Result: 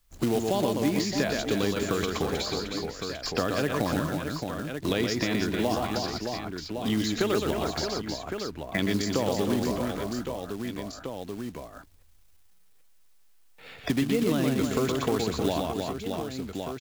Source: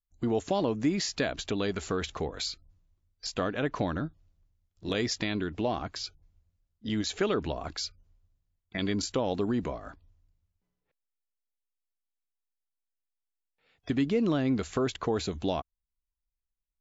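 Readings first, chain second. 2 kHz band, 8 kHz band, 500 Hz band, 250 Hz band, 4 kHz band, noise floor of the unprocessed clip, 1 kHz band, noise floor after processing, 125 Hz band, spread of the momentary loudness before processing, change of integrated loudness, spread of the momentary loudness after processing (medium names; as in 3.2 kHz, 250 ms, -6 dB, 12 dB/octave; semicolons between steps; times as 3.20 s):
+4.5 dB, no reading, +4.0 dB, +4.0 dB, +4.0 dB, under -85 dBFS, +4.5 dB, -56 dBFS, +4.0 dB, 11 LU, +2.5 dB, 9 LU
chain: reverse bouncing-ball echo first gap 120 ms, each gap 1.6×, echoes 5; short-mantissa float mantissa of 2-bit; three bands compressed up and down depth 70%; trim +1.5 dB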